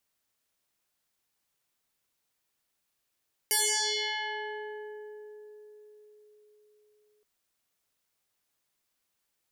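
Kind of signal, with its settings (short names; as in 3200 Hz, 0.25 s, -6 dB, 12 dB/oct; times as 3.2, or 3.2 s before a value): FM tone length 3.72 s, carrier 422 Hz, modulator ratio 3.04, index 9.9, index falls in 3.21 s exponential, decay 4.97 s, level -22.5 dB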